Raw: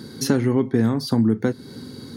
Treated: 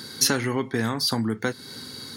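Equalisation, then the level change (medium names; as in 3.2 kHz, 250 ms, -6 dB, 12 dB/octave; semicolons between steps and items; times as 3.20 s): tilt shelf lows -7 dB, about 690 Hz; peaking EQ 290 Hz -4 dB 2.2 oct; +1.0 dB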